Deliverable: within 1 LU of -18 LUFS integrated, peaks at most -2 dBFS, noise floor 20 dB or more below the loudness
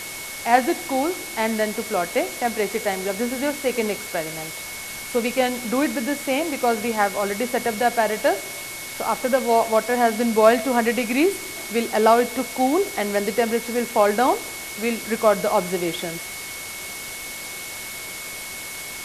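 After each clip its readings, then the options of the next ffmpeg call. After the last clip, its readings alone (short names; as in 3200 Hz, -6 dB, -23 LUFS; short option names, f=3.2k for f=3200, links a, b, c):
steady tone 2200 Hz; tone level -36 dBFS; noise floor -34 dBFS; noise floor target -43 dBFS; loudness -22.5 LUFS; peak -2.0 dBFS; loudness target -18.0 LUFS
-> -af "bandreject=f=2.2k:w=30"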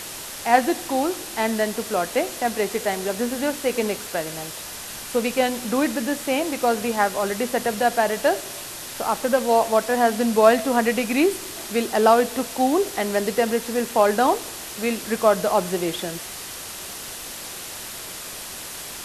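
steady tone none; noise floor -35 dBFS; noise floor target -43 dBFS
-> -af "afftdn=nr=8:nf=-35"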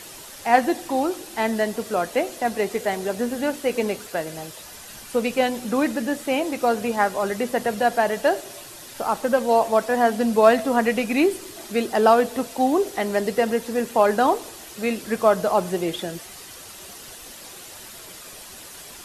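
noise floor -41 dBFS; noise floor target -43 dBFS
-> -af "afftdn=nr=6:nf=-41"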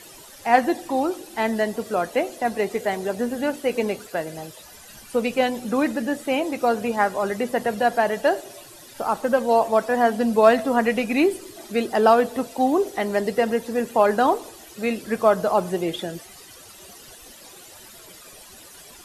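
noise floor -45 dBFS; loudness -22.5 LUFS; peak -2.0 dBFS; loudness target -18.0 LUFS
-> -af "volume=4.5dB,alimiter=limit=-2dB:level=0:latency=1"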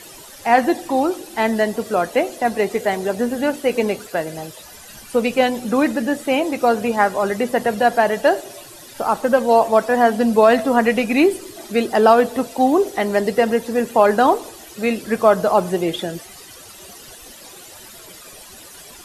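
loudness -18.0 LUFS; peak -2.0 dBFS; noise floor -41 dBFS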